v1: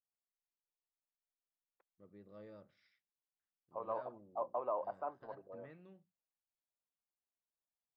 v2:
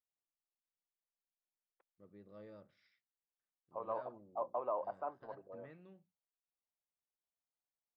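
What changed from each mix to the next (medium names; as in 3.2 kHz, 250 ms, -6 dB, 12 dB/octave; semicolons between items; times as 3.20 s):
no change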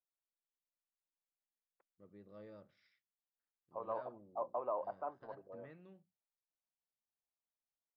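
second voice: add distance through air 220 m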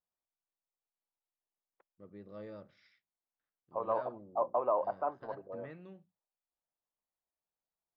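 first voice +7.5 dB; second voice +8.0 dB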